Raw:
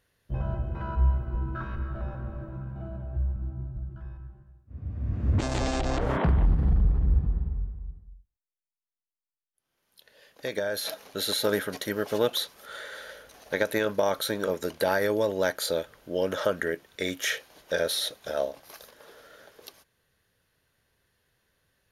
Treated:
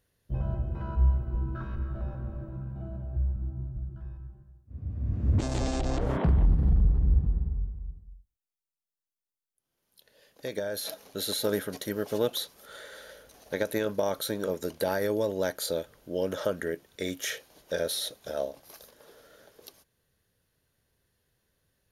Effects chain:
parametric band 1,700 Hz −7 dB 2.8 octaves

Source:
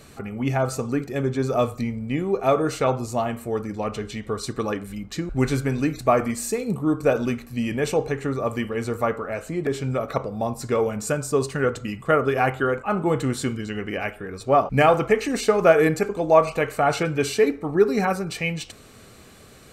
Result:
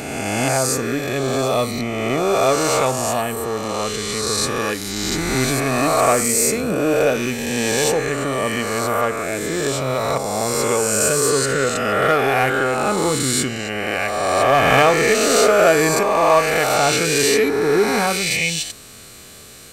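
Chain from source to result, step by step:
peak hold with a rise ahead of every peak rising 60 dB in 2.05 s
in parallel at −7.5 dB: hard clipping −15.5 dBFS, distortion −9 dB
on the sum: high-shelf EQ 2,500 Hz +11.5 dB
level −4 dB

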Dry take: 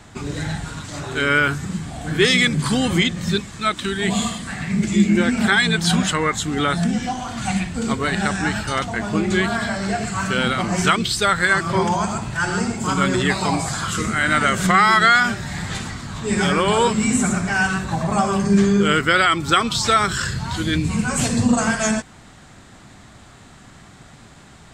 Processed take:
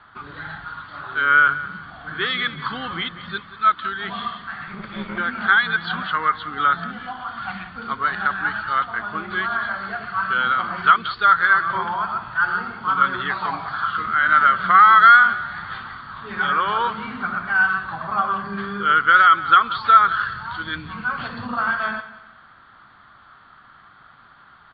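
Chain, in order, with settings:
0:04.67–0:05.18: lower of the sound and its delayed copy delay 0.84 ms
Chebyshev low-pass with heavy ripple 4,600 Hz, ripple 9 dB
parametric band 1,400 Hz +14.5 dB 1.3 octaves
on a send: repeating echo 182 ms, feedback 34%, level −15.5 dB
on the sum: level −7.5 dB

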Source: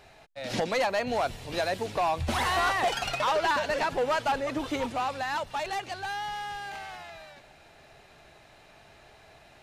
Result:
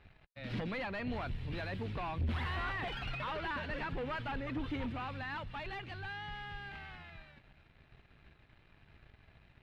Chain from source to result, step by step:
guitar amp tone stack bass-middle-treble 6-0-2
leveller curve on the samples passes 3
high-frequency loss of the air 470 metres
level +7 dB

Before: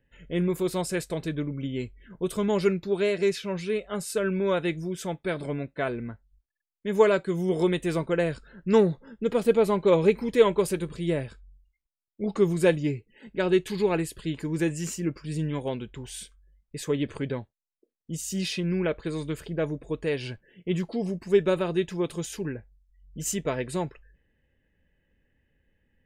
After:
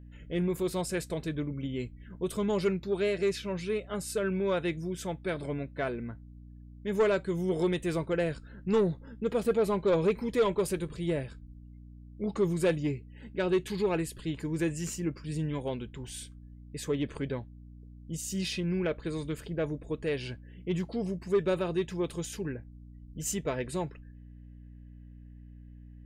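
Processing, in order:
mains hum 60 Hz, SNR 18 dB
soft clipping −15.5 dBFS, distortion −15 dB
level −3 dB

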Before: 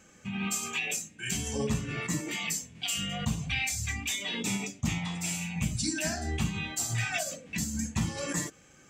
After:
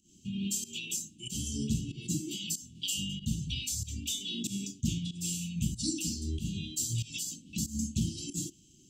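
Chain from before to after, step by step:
fake sidechain pumping 94 BPM, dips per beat 1, −18 dB, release 157 ms
Chebyshev band-stop filter 370–2,900 Hz, order 5

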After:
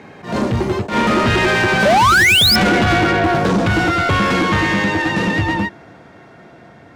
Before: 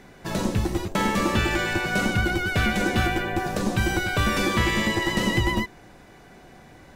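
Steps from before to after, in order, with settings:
source passing by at 0:02.48, 26 m/s, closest 22 metres
high-pass filter 82 Hz 24 dB per octave
RIAA equalisation playback
brickwall limiter −12.5 dBFS, peak gain reduction 8 dB
sound drawn into the spectrogram rise, 0:01.85–0:02.56, 550–5,400 Hz −19 dBFS
mid-hump overdrive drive 24 dB, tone 7,700 Hz, clips at −11 dBFS
level that may rise only so fast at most 150 dB per second
level +4 dB

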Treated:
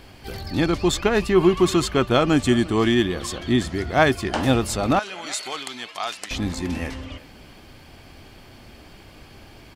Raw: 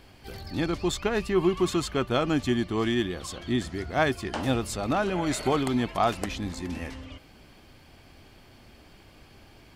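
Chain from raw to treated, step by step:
0:02.32–0:02.78: parametric band 8,300 Hz +10.5 dB 0.28 octaves
0:04.99–0:06.31: resonant band-pass 5,200 Hz, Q 0.66
far-end echo of a speakerphone 350 ms, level −19 dB
level +7 dB

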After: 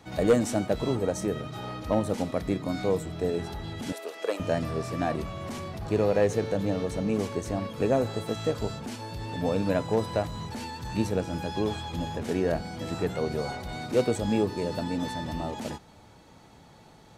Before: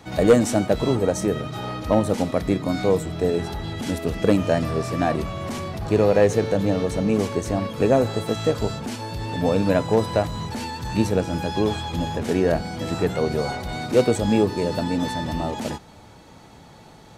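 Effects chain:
0:03.92–0:04.40: high-pass filter 440 Hz 24 dB per octave
level −6.5 dB

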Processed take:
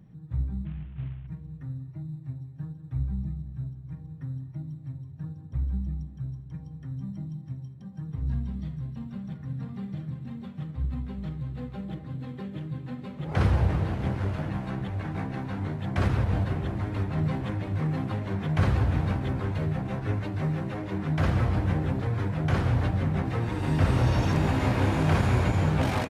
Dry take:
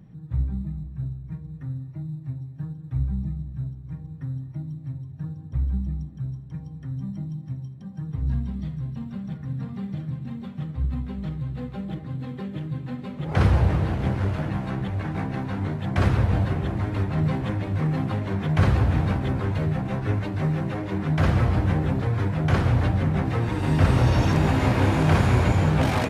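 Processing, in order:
0:00.65–0:01.27: variable-slope delta modulation 16 kbit/s
on a send: repeating echo 185 ms, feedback 47%, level −19 dB
on the sum: every ending faded ahead of time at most 250 dB per second
level −4 dB

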